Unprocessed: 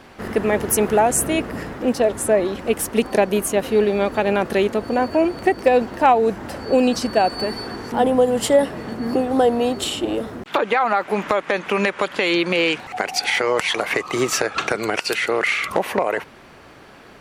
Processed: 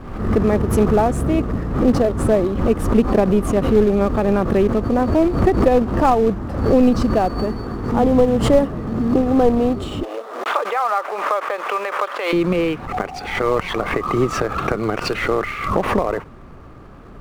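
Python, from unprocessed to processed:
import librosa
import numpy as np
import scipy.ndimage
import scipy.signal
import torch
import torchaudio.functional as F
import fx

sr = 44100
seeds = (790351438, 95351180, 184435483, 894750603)

y = fx.peak_eq(x, sr, hz=1200.0, db=11.0, octaves=0.27)
y = fx.quant_companded(y, sr, bits=4)
y = fx.highpass(y, sr, hz=520.0, slope=24, at=(10.03, 12.33))
y = fx.tilt_eq(y, sr, slope=-4.5)
y = fx.pre_swell(y, sr, db_per_s=64.0)
y = F.gain(torch.from_numpy(y), -4.5).numpy()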